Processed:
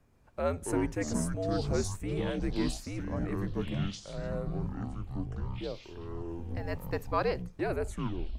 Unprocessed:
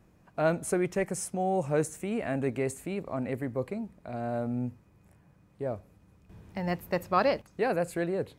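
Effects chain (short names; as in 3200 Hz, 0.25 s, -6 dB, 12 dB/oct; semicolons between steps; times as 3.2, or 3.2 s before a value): tape stop at the end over 0.52 s; echoes that change speed 0.12 s, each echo -6 st, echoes 3; frequency shift -82 Hz; gain -4.5 dB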